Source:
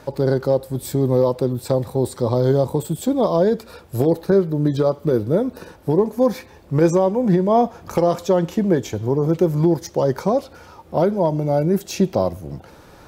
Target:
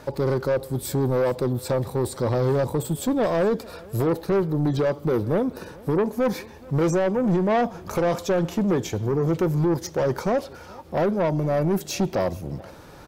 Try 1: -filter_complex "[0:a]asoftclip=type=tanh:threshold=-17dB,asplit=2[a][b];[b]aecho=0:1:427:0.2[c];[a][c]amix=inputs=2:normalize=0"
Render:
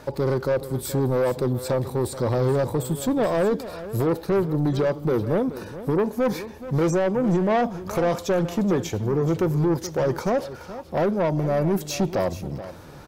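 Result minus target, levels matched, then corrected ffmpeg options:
echo-to-direct +9 dB
-filter_complex "[0:a]asoftclip=type=tanh:threshold=-17dB,asplit=2[a][b];[b]aecho=0:1:427:0.0708[c];[a][c]amix=inputs=2:normalize=0"

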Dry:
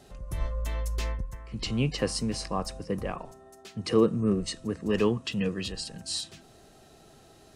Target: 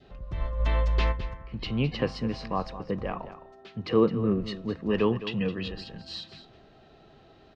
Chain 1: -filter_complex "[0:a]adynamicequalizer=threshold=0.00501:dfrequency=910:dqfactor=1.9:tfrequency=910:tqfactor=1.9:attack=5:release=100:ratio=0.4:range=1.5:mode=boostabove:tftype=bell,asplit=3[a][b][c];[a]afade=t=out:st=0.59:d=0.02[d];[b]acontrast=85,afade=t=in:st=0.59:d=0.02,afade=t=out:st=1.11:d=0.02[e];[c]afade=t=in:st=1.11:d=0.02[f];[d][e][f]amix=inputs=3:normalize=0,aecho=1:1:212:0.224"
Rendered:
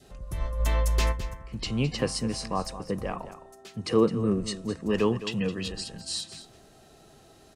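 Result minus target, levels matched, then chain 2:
4000 Hz band +3.0 dB
-filter_complex "[0:a]adynamicequalizer=threshold=0.00501:dfrequency=910:dqfactor=1.9:tfrequency=910:tqfactor=1.9:attack=5:release=100:ratio=0.4:range=1.5:mode=boostabove:tftype=bell,lowpass=f=3.9k:w=0.5412,lowpass=f=3.9k:w=1.3066,asplit=3[a][b][c];[a]afade=t=out:st=0.59:d=0.02[d];[b]acontrast=85,afade=t=in:st=0.59:d=0.02,afade=t=out:st=1.11:d=0.02[e];[c]afade=t=in:st=1.11:d=0.02[f];[d][e][f]amix=inputs=3:normalize=0,aecho=1:1:212:0.224"

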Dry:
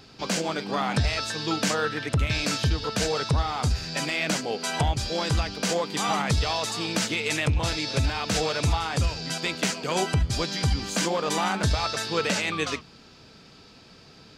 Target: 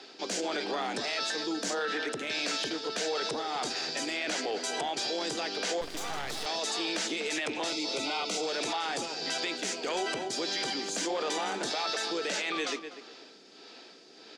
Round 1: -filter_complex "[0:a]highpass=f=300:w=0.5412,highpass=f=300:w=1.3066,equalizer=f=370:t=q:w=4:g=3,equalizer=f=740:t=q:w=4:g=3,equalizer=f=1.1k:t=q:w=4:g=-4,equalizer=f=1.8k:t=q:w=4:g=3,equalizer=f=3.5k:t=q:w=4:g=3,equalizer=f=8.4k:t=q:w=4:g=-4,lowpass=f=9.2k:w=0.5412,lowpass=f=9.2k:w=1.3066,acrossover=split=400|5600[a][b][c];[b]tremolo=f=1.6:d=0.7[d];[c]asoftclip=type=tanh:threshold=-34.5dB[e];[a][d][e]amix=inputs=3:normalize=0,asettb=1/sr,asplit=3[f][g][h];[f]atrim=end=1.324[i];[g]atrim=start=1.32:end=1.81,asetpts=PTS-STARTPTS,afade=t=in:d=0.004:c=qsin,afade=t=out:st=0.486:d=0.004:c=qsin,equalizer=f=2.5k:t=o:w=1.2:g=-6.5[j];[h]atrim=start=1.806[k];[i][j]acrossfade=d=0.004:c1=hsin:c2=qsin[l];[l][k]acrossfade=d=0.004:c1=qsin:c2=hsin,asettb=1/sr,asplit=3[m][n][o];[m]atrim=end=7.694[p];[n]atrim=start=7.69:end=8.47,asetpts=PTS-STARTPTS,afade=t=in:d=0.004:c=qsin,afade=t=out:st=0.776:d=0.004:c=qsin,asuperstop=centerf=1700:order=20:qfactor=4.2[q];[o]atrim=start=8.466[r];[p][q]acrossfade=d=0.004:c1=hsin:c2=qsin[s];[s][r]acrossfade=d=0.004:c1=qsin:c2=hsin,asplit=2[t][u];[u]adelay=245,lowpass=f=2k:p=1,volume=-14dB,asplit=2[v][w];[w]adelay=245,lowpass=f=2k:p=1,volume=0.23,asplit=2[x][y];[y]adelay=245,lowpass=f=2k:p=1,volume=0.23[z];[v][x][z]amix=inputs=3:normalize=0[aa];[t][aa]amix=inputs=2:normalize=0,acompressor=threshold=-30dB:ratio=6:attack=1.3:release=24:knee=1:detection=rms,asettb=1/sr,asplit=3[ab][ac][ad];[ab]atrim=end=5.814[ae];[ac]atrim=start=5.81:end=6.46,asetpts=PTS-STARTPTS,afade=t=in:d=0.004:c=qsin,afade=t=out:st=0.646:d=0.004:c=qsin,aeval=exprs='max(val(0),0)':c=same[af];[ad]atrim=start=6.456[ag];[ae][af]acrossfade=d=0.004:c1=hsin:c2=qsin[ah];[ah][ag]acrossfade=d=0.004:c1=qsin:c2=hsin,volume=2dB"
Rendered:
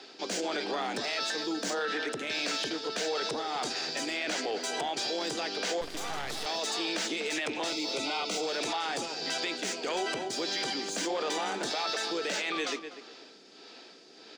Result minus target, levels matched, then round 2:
soft clip: distortion +17 dB
-filter_complex "[0:a]highpass=f=300:w=0.5412,highpass=f=300:w=1.3066,equalizer=f=370:t=q:w=4:g=3,equalizer=f=740:t=q:w=4:g=3,equalizer=f=1.1k:t=q:w=4:g=-4,equalizer=f=1.8k:t=q:w=4:g=3,equalizer=f=3.5k:t=q:w=4:g=3,equalizer=f=8.4k:t=q:w=4:g=-4,lowpass=f=9.2k:w=0.5412,lowpass=f=9.2k:w=1.3066,acrossover=split=400|5600[a][b][c];[b]tremolo=f=1.6:d=0.7[d];[c]asoftclip=type=tanh:threshold=-23dB[e];[a][d][e]amix=inputs=3:normalize=0,asettb=1/sr,asplit=3[f][g][h];[f]atrim=end=1.324[i];[g]atrim=start=1.32:end=1.81,asetpts=PTS-STARTPTS,afade=t=in:d=0.004:c=qsin,afade=t=out:st=0.486:d=0.004:c=qsin,equalizer=f=2.5k:t=o:w=1.2:g=-6.5[j];[h]atrim=start=1.806[k];[i][j]acrossfade=d=0.004:c1=hsin:c2=qsin[l];[l][k]acrossfade=d=0.004:c1=qsin:c2=hsin,asettb=1/sr,asplit=3[m][n][o];[m]atrim=end=7.694[p];[n]atrim=start=7.69:end=8.47,asetpts=PTS-STARTPTS,afade=t=in:d=0.004:c=qsin,afade=t=out:st=0.776:d=0.004:c=qsin,asuperstop=centerf=1700:order=20:qfactor=4.2[q];[o]atrim=start=8.466[r];[p][q]acrossfade=d=0.004:c1=hsin:c2=qsin[s];[s][r]acrossfade=d=0.004:c1=qsin:c2=hsin,asplit=2[t][u];[u]adelay=245,lowpass=f=2k:p=1,volume=-14dB,asplit=2[v][w];[w]adelay=245,lowpass=f=2k:p=1,volume=0.23,asplit=2[x][y];[y]adelay=245,lowpass=f=2k:p=1,volume=0.23[z];[v][x][z]amix=inputs=3:normalize=0[aa];[t][aa]amix=inputs=2:normalize=0,acompressor=threshold=-30dB:ratio=6:attack=1.3:release=24:knee=1:detection=rms,asettb=1/sr,asplit=3[ab][ac][ad];[ab]atrim=end=5.814[ae];[ac]atrim=start=5.81:end=6.46,asetpts=PTS-STARTPTS,afade=t=in:d=0.004:c=qsin,afade=t=out:st=0.646:d=0.004:c=qsin,aeval=exprs='max(val(0),0)':c=same[af];[ad]atrim=start=6.456[ag];[ae][af]acrossfade=d=0.004:c1=hsin:c2=qsin[ah];[ah][ag]acrossfade=d=0.004:c1=qsin:c2=hsin,volume=2dB"

